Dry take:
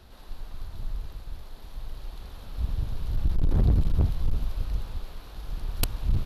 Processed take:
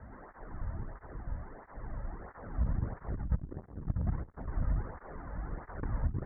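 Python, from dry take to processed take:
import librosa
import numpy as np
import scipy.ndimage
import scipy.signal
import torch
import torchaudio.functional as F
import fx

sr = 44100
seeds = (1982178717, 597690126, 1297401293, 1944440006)

y = fx.diode_clip(x, sr, knee_db=-19.0)
y = scipy.signal.sosfilt(scipy.signal.butter(16, 2000.0, 'lowpass', fs=sr, output='sos'), y)
y = fx.low_shelf(y, sr, hz=67.0, db=5.0)
y = fx.over_compress(y, sr, threshold_db=-24.0, ratio=-0.5)
y = fx.flanger_cancel(y, sr, hz=1.5, depth_ms=2.9)
y = F.gain(torch.from_numpy(y), 4.5).numpy()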